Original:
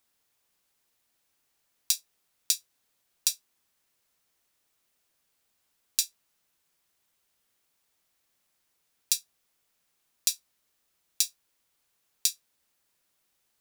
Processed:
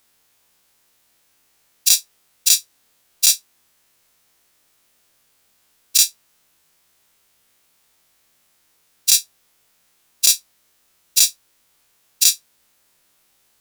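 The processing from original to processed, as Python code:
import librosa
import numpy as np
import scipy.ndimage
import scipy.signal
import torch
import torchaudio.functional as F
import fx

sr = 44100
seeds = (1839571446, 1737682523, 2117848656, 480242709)

p1 = fx.spec_dilate(x, sr, span_ms=60)
p2 = fx.fold_sine(p1, sr, drive_db=10, ceiling_db=1.5)
p3 = p1 + F.gain(torch.from_numpy(p2), -7.0).numpy()
y = F.gain(torch.from_numpy(p3), -1.0).numpy()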